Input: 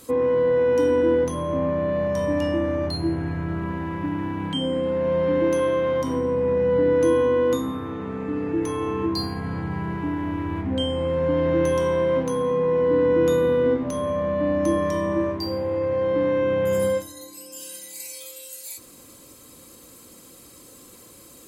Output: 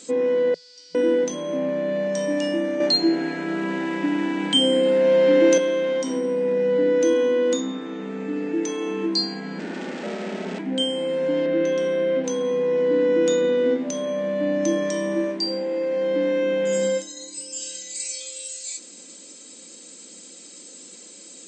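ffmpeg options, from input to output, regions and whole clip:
-filter_complex "[0:a]asettb=1/sr,asplit=3[a][b][c];[a]atrim=end=0.544[d];[b]atrim=start=0.54:end=0.95,asetpts=PTS-STARTPTS,afade=t=in:d=0.004:c=qsin,afade=t=out:st=0.406:d=0.004:c=qsin,aeval=exprs='val(0)+0.5*0.0398*sgn(val(0))':c=same,bandpass=f=4.7k:t=q:w=12[e];[c]atrim=start=0.946[f];[d][e]acrossfade=d=0.004:c1=hsin:c2=qsin[g];[g][f]acrossfade=d=0.004:c1=qsin:c2=hsin,asettb=1/sr,asplit=3[h][i][j];[h]atrim=end=2.804[k];[i]atrim=start=2.8:end=5.58,asetpts=PTS-STARTPTS,afade=t=in:d=0.004:c=qsin,afade=t=out:st=2.776:d=0.004:c=qsin,highpass=230,acontrast=64[l];[j]atrim=start=5.576[m];[k][l]acrossfade=d=0.004:c1=hsin:c2=qsin[n];[n][m]acrossfade=d=0.004:c1=qsin:c2=hsin,asettb=1/sr,asplit=3[o][p][q];[o]atrim=end=9.594[r];[p]atrim=start=9.59:end=10.59,asetpts=PTS-STARTPTS,afade=t=in:d=0.004:c=qsin,afade=t=out:st=0.996:d=0.004:c=qsin,lowshelf=f=150:g=8,aeval=exprs='abs(val(0))':c=same[s];[q]atrim=start=10.586[t];[r][s]acrossfade=d=0.004:c1=hsin:c2=qsin[u];[u][t]acrossfade=d=0.004:c1=qsin:c2=hsin,asettb=1/sr,asplit=3[v][w][x];[v]atrim=end=11.464[y];[w]atrim=start=11.46:end=12.24,asetpts=PTS-STARTPTS,afade=t=in:d=0.004:c=qsin,afade=t=out:st=0.776:d=0.004:c=qsin,asuperstop=centerf=920:order=8:qfactor=4.3,equalizer=f=8k:t=o:w=1.4:g=-14.5[z];[x]atrim=start=12.236[aa];[y][z]acrossfade=d=0.004:c1=hsin:c2=qsin[ab];[ab][aa]acrossfade=d=0.004:c1=qsin:c2=hsin,equalizer=f=1.1k:t=o:w=0.43:g=-12,afftfilt=real='re*between(b*sr/4096,170,8600)':imag='im*between(b*sr/4096,170,8600)':win_size=4096:overlap=0.75,highshelf=f=3.3k:g=11.5"

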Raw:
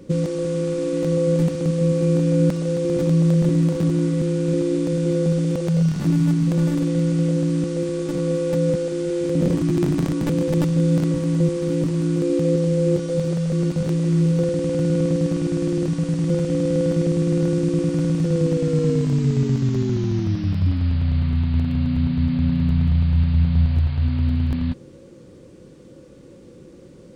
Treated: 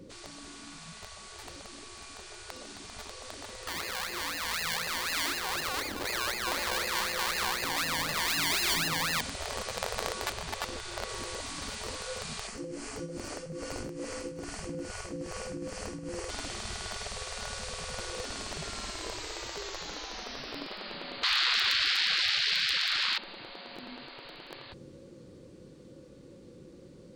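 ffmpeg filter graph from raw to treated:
-filter_complex "[0:a]asettb=1/sr,asplit=3[a][b][c];[a]atrim=end=3.674[d];[b]atrim=start=3.67:end=9.21,asetpts=PTS-STARTPTS,afade=t=in:d=0.004:c=qsin,afade=t=out:st=5.536:d=0.004:c=qsin,highpass=f=270:p=1,acrusher=samples=27:mix=1:aa=0.000001:lfo=1:lforange=16.2:lforate=4[e];[c]atrim=start=9.206[f];[d][e]acrossfade=d=0.004:c1=hsin:c2=qsin[g];[g][f]acrossfade=d=0.004:c1=qsin:c2=hsin,asettb=1/sr,asplit=3[h][i][j];[h]atrim=end=10.324[k];[i]atrim=start=10.32:end=11.09,asetpts=PTS-STARTPTS,afade=t=in:d=0.004:c=qsin,afade=t=out:st=0.766:d=0.004:c=qsin,highshelf=f=4.2k:g=-5,asoftclip=type=hard:threshold=-10.5dB[l];[j]atrim=start=11.086[m];[k][l]acrossfade=d=0.004:c1=hsin:c2=qsin[n];[n][m]acrossfade=d=0.004:c1=qsin:c2=hsin,asettb=1/sr,asplit=3[o][p][q];[o]atrim=end=12.474[r];[p]atrim=start=12.47:end=16.29,asetpts=PTS-STARTPTS,afade=t=in:d=0.004:c=qsin,afade=t=out:st=3.816:d=0.004:c=qsin,equalizer=f=3.7k:w=3.7:g=-13.5,tremolo=f=2.4:d=0.88[s];[q]atrim=start=16.286[t];[r][s]acrossfade=d=0.004:c1=hsin:c2=qsin[u];[u][t]acrossfade=d=0.004:c1=qsin:c2=hsin,asettb=1/sr,asplit=3[v][w][x];[v]atrim=end=21.234[y];[w]atrim=start=21.23:end=23.18,asetpts=PTS-STARTPTS,afade=t=in:d=0.004:c=qsin,afade=t=out:st=1.946:d=0.004:c=qsin,equalizer=f=2.4k:w=1.8:g=3.5,aeval=exprs='0.376*sin(PI/2*7.08*val(0)/0.376)':c=same[z];[x]atrim=start=23.176[aa];[y][z]acrossfade=d=0.004:c1=hsin:c2=qsin[ab];[ab][aa]acrossfade=d=0.004:c1=qsin:c2=hsin,afftfilt=real='re*lt(hypot(re,im),0.141)':imag='im*lt(hypot(re,im),0.141)':win_size=1024:overlap=0.75,equalizer=f=4.3k:t=o:w=0.4:g=5,dynaudnorm=f=310:g=31:m=8.5dB,volume=-6.5dB"

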